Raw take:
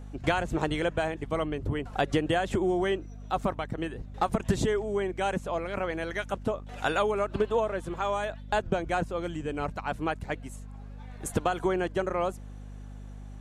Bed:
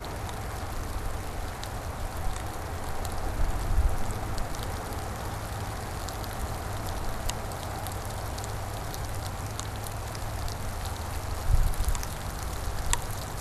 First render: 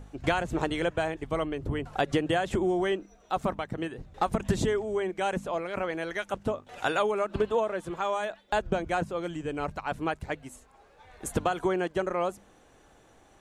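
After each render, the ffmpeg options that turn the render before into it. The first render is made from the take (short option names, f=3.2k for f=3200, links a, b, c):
-af "bandreject=f=50:t=h:w=4,bandreject=f=100:t=h:w=4,bandreject=f=150:t=h:w=4,bandreject=f=200:t=h:w=4,bandreject=f=250:t=h:w=4"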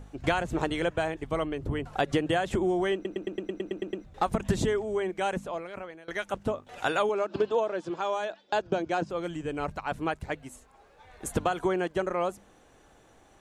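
-filter_complex "[0:a]asettb=1/sr,asplit=3[a][b][c];[a]atrim=end=7.094[d];[b]atrim=start=7.09:end=9.1,asetpts=PTS-STARTPTS,afade=t=in:d=0.004:c=qsin,afade=t=out:st=2.006:d=0.004:c=qsin,highpass=150,equalizer=f=220:t=q:w=4:g=-4,equalizer=f=320:t=q:w=4:g=5,equalizer=f=1.2k:t=q:w=4:g=-3,equalizer=f=2k:t=q:w=4:g=-5,equalizer=f=5k:t=q:w=4:g=7,lowpass=f=7k:w=0.5412,lowpass=f=7k:w=1.3066[e];[c]atrim=start=9.096[f];[d][e]acrossfade=d=0.004:c1=hsin:c2=qsin[g];[g][f]acrossfade=d=0.004:c1=qsin:c2=hsin,asplit=12[h][i][j][k][l][m][n][o][p][q][r][s];[h]atrim=end=3.052[t];[i]atrim=start=2.938:end=3.052[u];[j]atrim=start=2.938:end=3.052[v];[k]atrim=start=2.938:end=3.052[w];[l]atrim=start=2.938:end=3.052[x];[m]atrim=start=2.938:end=3.052[y];[n]atrim=start=2.938:end=3.052[z];[o]atrim=start=2.938:end=3.052[aa];[p]atrim=start=2.938:end=3.052[ab];[q]atrim=start=2.938:end=3.052[ac];[r]atrim=start=4.038:end=6.08,asetpts=PTS-STARTPTS,afade=t=out:st=1.212:d=0.83:silence=0.0707946[ad];[s]atrim=start=6.08,asetpts=PTS-STARTPTS,afade=t=in:d=0.004:c=hsin:silence=0.0707946[ae];[t][u]acrossfade=d=0.004:c1=hsin:c2=hsin[af];[af][v]acrossfade=d=0.004:c1=hsin:c2=hsin[ag];[ag][w]acrossfade=d=0.004:c1=hsin:c2=hsin[ah];[ah][x]acrossfade=d=0.004:c1=hsin:c2=hsin[ai];[ai][y]acrossfade=d=0.004:c1=hsin:c2=hsin[aj];[aj][z]acrossfade=d=0.004:c1=hsin:c2=hsin[ak];[ak][aa]acrossfade=d=0.004:c1=hsin:c2=hsin[al];[al][ab]acrossfade=d=0.004:c1=hsin:c2=hsin[am];[am][ac]acrossfade=d=0.004:c1=hsin:c2=hsin[an];[ad][ae]concat=n=2:v=0:a=1[ao];[an][ao]acrossfade=d=0.004:c1=hsin:c2=hsin"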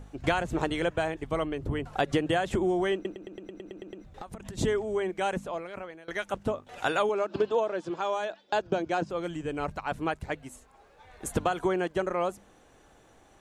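-filter_complex "[0:a]asplit=3[a][b][c];[a]afade=t=out:st=3.12:d=0.02[d];[b]acompressor=threshold=-37dB:ratio=10:attack=3.2:release=140:knee=1:detection=peak,afade=t=in:st=3.12:d=0.02,afade=t=out:st=4.57:d=0.02[e];[c]afade=t=in:st=4.57:d=0.02[f];[d][e][f]amix=inputs=3:normalize=0"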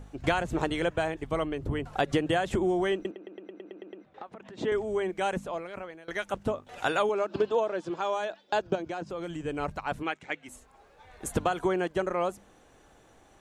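-filter_complex "[0:a]asettb=1/sr,asplit=3[a][b][c];[a]atrim=end=3.114[d];[b]atrim=start=3.11:end=4.72,asetpts=PTS-STARTPTS,afade=t=in:d=0.004:c=qsin,afade=t=out:st=1.606:d=0.004:c=qsin,highpass=280,lowpass=2.9k[e];[c]atrim=start=4.716[f];[d][e]acrossfade=d=0.004:c1=hsin:c2=qsin[g];[g][f]acrossfade=d=0.004:c1=qsin:c2=hsin,asettb=1/sr,asplit=3[h][i][j];[h]atrim=end=8.754[k];[i]atrim=start=8.75:end=9.46,asetpts=PTS-STARTPTS,afade=t=in:d=0.004:c=qsin,afade=t=out:st=0.706:d=0.004:c=qsin,acompressor=threshold=-31dB:ratio=6:attack=3.2:release=140:knee=1:detection=peak[l];[j]atrim=start=9.456[m];[k][l]acrossfade=d=0.004:c1=hsin:c2=qsin[n];[n][m]acrossfade=d=0.004:c1=qsin:c2=hsin,asplit=3[o][p][q];[o]afade=t=out:st=10.02:d=0.02[r];[p]highpass=290,equalizer=f=430:t=q:w=4:g=-5,equalizer=f=640:t=q:w=4:g=-6,equalizer=f=990:t=q:w=4:g=-5,equalizer=f=2.2k:t=q:w=4:g=7,equalizer=f=3.2k:t=q:w=4:g=4,equalizer=f=4.6k:t=q:w=4:g=-7,lowpass=f=7.4k:w=0.5412,lowpass=f=7.4k:w=1.3066,afade=t=in:st=10.02:d=0.02,afade=t=out:st=10.47:d=0.02[s];[q]afade=t=in:st=10.47:d=0.02[t];[r][s][t]amix=inputs=3:normalize=0"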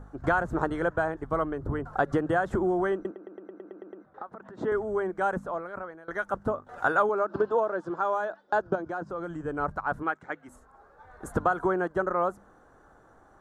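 -af "highshelf=f=1.9k:t=q:w=3:g=-10"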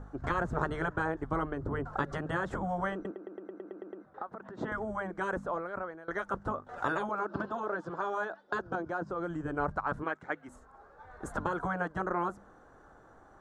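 -af "afftfilt=real='re*lt(hypot(re,im),0.251)':imag='im*lt(hypot(re,im),0.251)':win_size=1024:overlap=0.75,lowpass=8k"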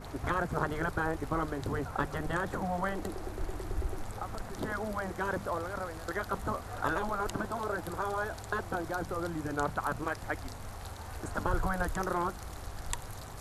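-filter_complex "[1:a]volume=-9.5dB[a];[0:a][a]amix=inputs=2:normalize=0"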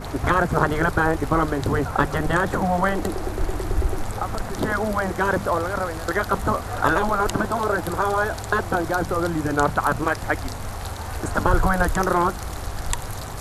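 -af "volume=12dB,alimiter=limit=-3dB:level=0:latency=1"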